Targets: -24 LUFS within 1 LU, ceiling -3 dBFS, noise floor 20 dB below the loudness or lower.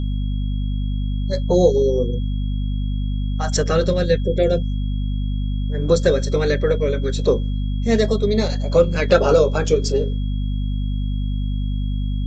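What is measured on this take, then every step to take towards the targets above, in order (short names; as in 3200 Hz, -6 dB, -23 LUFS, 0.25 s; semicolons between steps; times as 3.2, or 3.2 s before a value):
hum 50 Hz; harmonics up to 250 Hz; hum level -19 dBFS; steady tone 3300 Hz; tone level -44 dBFS; loudness -20.5 LUFS; peak -1.5 dBFS; loudness target -24.0 LUFS
-> notches 50/100/150/200/250 Hz; notch 3300 Hz, Q 30; gain -3.5 dB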